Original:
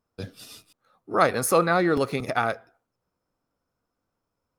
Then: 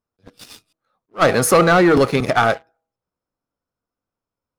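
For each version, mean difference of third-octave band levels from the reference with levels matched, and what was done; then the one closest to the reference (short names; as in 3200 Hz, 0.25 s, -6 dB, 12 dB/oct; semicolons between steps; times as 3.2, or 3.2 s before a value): 4.5 dB: de-hum 162.1 Hz, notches 5; sample leveller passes 3; high shelf 11000 Hz -9 dB; attack slew limiter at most 430 dB/s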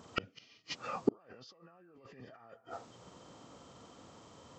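12.0 dB: nonlinear frequency compression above 1100 Hz 1.5:1; HPF 100 Hz 12 dB/oct; negative-ratio compressor -33 dBFS, ratio -1; flipped gate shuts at -33 dBFS, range -42 dB; gain +18 dB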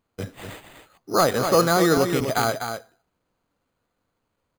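7.5 dB: de-esser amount 95%; high shelf 7700 Hz +5.5 dB; on a send: echo 0.248 s -7.5 dB; on the sum: careless resampling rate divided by 8×, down none, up hold; gain +3.5 dB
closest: first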